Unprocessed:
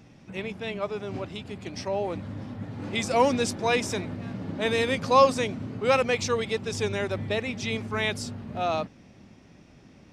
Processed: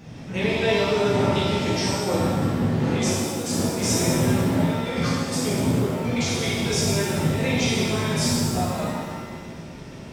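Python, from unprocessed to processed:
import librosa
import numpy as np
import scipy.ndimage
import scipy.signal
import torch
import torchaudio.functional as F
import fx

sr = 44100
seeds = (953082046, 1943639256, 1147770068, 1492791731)

y = fx.over_compress(x, sr, threshold_db=-32.0, ratio=-0.5)
y = fx.rev_shimmer(y, sr, seeds[0], rt60_s=1.5, semitones=7, shimmer_db=-8, drr_db=-8.0)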